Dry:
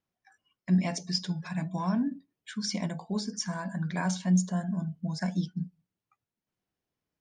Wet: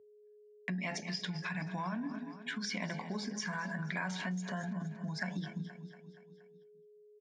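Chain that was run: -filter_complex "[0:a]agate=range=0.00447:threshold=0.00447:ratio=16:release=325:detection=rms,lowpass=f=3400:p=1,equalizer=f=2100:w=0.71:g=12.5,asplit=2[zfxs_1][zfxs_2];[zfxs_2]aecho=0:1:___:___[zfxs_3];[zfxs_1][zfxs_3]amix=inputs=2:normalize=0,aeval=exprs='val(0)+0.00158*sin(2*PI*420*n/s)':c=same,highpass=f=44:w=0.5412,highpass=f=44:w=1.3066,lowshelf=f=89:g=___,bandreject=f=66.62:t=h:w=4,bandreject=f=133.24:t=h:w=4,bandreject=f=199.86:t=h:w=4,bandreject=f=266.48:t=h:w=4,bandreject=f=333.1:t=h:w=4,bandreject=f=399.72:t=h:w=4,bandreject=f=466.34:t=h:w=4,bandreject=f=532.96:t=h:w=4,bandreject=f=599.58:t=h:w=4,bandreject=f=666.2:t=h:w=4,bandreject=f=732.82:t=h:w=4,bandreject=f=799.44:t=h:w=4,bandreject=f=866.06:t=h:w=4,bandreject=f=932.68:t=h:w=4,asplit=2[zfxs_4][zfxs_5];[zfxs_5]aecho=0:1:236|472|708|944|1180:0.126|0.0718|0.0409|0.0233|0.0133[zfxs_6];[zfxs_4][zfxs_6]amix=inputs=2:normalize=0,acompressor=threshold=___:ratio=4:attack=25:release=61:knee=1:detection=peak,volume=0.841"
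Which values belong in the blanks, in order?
212, 0.119, -5, 0.0126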